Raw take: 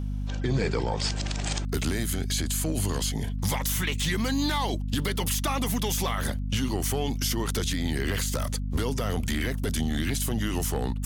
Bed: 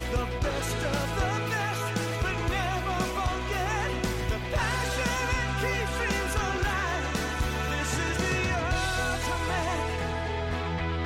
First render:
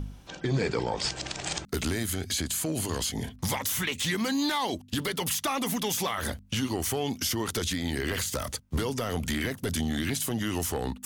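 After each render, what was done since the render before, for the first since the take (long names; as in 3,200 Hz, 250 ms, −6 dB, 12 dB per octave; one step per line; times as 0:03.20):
hum removal 50 Hz, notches 5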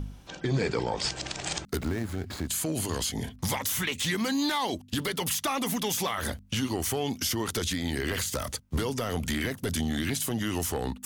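0:01.77–0:02.48: running median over 15 samples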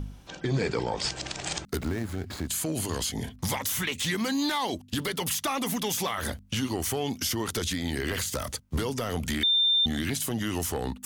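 0:09.43–0:09.86: beep over 3,590 Hz −19.5 dBFS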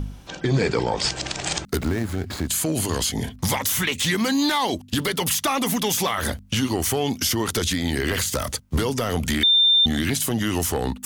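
level +6.5 dB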